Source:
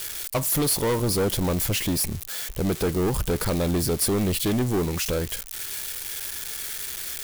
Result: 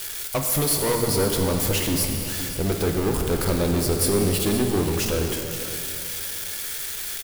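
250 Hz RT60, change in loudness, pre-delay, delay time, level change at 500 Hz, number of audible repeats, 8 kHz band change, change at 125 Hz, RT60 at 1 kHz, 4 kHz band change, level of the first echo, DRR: 2.8 s, +2.0 dB, 5 ms, 0.517 s, +2.5 dB, 1, +2.0 dB, +1.5 dB, 2.8 s, +2.0 dB, -13.0 dB, 2.0 dB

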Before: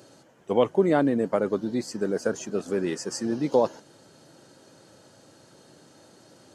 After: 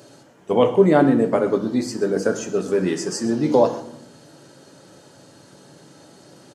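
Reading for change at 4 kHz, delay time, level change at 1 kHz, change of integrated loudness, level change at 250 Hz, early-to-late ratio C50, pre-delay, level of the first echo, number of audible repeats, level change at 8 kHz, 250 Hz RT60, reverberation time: +5.5 dB, 0.126 s, +6.5 dB, +6.5 dB, +6.5 dB, 10.5 dB, 7 ms, -18.0 dB, 1, +5.5 dB, 1.1 s, 0.75 s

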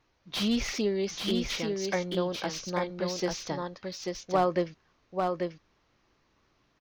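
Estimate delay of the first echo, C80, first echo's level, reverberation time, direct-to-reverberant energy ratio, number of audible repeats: 0.84 s, none, -4.0 dB, none, none, 1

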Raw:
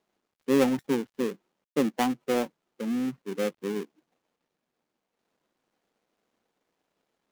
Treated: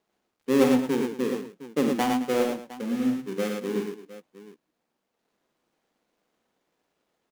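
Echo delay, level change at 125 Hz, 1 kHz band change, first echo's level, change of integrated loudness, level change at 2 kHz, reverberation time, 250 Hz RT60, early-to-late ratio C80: 47 ms, +2.5 dB, +2.5 dB, -7.5 dB, +2.5 dB, +2.0 dB, none, none, none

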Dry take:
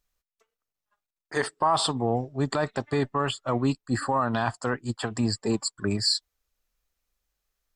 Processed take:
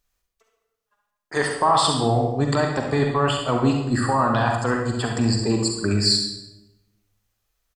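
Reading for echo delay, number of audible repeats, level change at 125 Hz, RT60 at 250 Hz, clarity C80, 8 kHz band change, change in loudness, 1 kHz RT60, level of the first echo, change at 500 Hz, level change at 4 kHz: 68 ms, 1, +7.5 dB, 1.2 s, 6.5 dB, +5.5 dB, +6.0 dB, 0.85 s, -8.5 dB, +5.5 dB, +5.5 dB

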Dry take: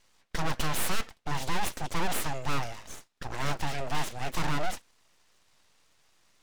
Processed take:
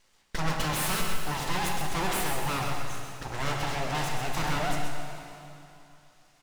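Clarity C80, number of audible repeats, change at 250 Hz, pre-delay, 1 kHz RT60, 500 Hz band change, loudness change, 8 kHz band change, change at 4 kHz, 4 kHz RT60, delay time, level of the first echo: 1.5 dB, 1, +3.0 dB, 4 ms, 2.8 s, +3.0 dB, +2.5 dB, +2.5 dB, +3.0 dB, 2.6 s, 0.13 s, -6.0 dB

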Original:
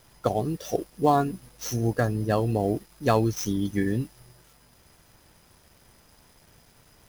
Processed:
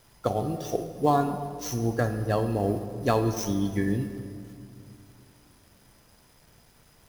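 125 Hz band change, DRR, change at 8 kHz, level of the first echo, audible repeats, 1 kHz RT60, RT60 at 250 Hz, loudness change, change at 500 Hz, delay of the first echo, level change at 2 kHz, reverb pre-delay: -1.0 dB, 8.0 dB, -1.5 dB, none, none, 2.3 s, 3.2 s, -1.0 dB, -1.0 dB, none, -1.5 dB, 18 ms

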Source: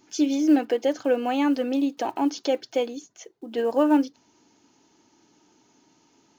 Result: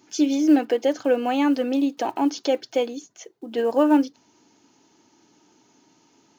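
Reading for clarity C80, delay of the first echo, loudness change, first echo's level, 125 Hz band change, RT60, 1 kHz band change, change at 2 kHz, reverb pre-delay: none, none, +2.0 dB, none, n/a, none, +2.0 dB, +2.0 dB, none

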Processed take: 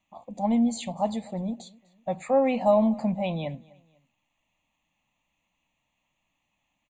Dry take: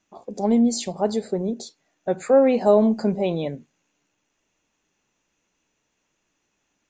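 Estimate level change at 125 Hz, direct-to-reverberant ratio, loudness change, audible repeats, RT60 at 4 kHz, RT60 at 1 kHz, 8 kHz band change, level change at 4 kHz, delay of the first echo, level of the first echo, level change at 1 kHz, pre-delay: -2.5 dB, none, -5.0 dB, 2, none, none, n/a, -6.0 dB, 0.249 s, -24.0 dB, -0.5 dB, none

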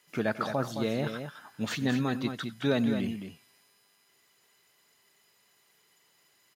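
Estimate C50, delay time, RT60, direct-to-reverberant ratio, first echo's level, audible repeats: none, 93 ms, none, none, -19.5 dB, 2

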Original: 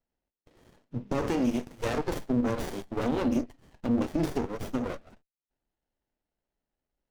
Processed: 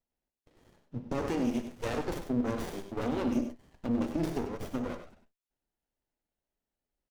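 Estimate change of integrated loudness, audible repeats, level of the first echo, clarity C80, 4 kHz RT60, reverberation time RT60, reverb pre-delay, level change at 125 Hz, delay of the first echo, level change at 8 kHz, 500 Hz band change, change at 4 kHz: -3.0 dB, 2, -16.5 dB, none, none, none, none, -3.5 dB, 61 ms, -3.5 dB, -3.5 dB, -3.5 dB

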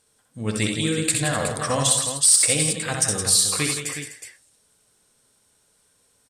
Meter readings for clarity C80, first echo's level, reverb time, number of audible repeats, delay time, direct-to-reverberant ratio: none, -5.0 dB, none, 4, 65 ms, none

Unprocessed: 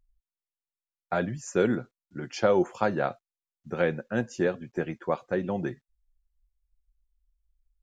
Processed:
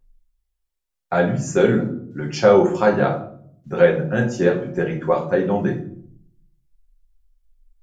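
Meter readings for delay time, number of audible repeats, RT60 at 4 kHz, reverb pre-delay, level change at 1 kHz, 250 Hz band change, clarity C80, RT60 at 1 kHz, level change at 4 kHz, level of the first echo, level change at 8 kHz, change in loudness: none, none, 0.40 s, 5 ms, +8.0 dB, +9.0 dB, 13.5 dB, 0.50 s, +8.0 dB, none, n/a, +9.5 dB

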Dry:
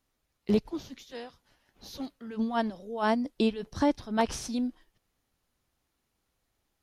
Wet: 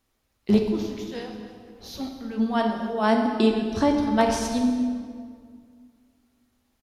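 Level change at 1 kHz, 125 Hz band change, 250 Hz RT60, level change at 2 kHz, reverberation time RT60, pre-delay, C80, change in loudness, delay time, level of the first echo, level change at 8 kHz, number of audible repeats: +6.0 dB, +7.5 dB, 2.5 s, +5.5 dB, 2.0 s, 5 ms, 5.5 dB, +6.5 dB, 0.25 s, -18.0 dB, +5.5 dB, 1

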